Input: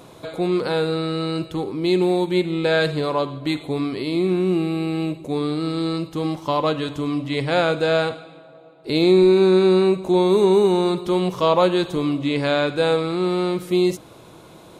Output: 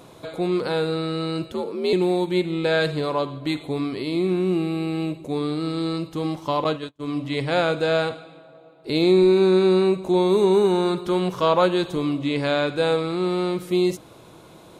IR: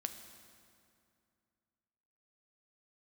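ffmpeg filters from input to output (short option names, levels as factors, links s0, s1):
-filter_complex "[0:a]asettb=1/sr,asplit=3[s0][s1][s2];[s0]atrim=end=1.524[s3];[s1]atrim=start=1.52:end=1.93,asetpts=PTS-STARTPTS,afade=t=in:d=0.004:c=qsin,afade=t=out:st=0.406:d=0.004:c=qsin,afreqshift=63[s4];[s2]atrim=start=1.926[s5];[s3][s4]acrossfade=d=0.004:c1=hsin:c2=qsin[s6];[s6][s5]acrossfade=d=0.004:c1=qsin:c2=hsin,asettb=1/sr,asplit=3[s7][s8][s9];[s7]atrim=end=6.644[s10];[s8]atrim=start=6.64:end=7.21,asetpts=PTS-STARTPTS,afade=t=in:d=0.004:c=qsin,afade=t=out:st=0.566:d=0.004:c=qsin,agate=range=0.0126:threshold=0.0708:ratio=16:detection=peak[s11];[s9]atrim=start=7.206[s12];[s10][s11]acrossfade=d=0.004:c1=hsin:c2=qsin[s13];[s13][s12]acrossfade=d=0.004:c1=qsin:c2=hsin,asettb=1/sr,asplit=3[s14][s15][s16];[s14]atrim=end=10.544[s17];[s15]atrim=start=10.54:end=11.66,asetpts=PTS-STARTPTS,afade=t=in:d=0.004:c=qsin,afade=t=out:st=1.116:d=0.004:c=qsin,equalizer=f=1500:t=o:w=0.39:g=7.5[s18];[s16]atrim=start=11.656[s19];[s17][s18]acrossfade=d=0.004:c1=hsin:c2=qsin[s20];[s20][s19]acrossfade=d=0.004:c1=qsin:c2=hsin,volume=0.794"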